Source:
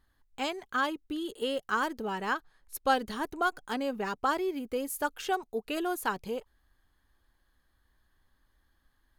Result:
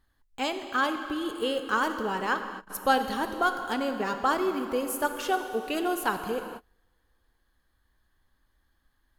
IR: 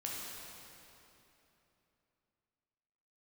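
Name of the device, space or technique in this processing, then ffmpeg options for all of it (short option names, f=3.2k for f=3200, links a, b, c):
keyed gated reverb: -filter_complex "[0:a]asplit=3[a][b][c];[1:a]atrim=start_sample=2205[d];[b][d]afir=irnorm=-1:irlink=0[e];[c]apad=whole_len=405134[f];[e][f]sidechaingate=range=-33dB:threshold=-57dB:ratio=16:detection=peak,volume=-4dB[g];[a][g]amix=inputs=2:normalize=0"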